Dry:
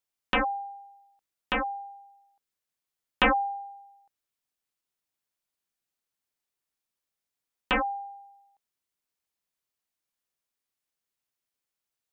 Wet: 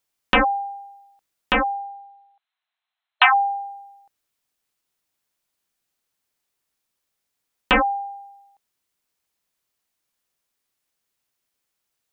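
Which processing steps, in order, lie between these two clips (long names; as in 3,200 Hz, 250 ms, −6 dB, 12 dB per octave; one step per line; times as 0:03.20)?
0:01.72–0:03.48: linear-phase brick-wall band-pass 630–4,200 Hz
level +8.5 dB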